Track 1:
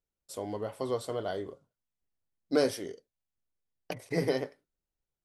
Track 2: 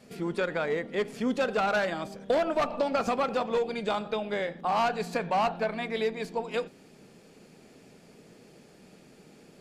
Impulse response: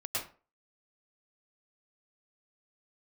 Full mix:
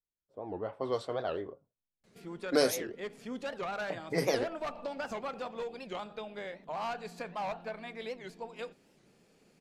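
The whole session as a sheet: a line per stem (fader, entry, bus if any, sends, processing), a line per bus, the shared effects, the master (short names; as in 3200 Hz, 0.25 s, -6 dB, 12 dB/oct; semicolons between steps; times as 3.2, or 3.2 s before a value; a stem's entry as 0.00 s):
-4.5 dB, 0.00 s, no send, high shelf 4700 Hz +6 dB; AGC gain up to 6 dB; low-pass opened by the level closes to 400 Hz, open at -18 dBFS
-9.5 dB, 2.05 s, no send, low shelf 130 Hz +7.5 dB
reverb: off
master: low shelf 360 Hz -6 dB; record warp 78 rpm, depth 250 cents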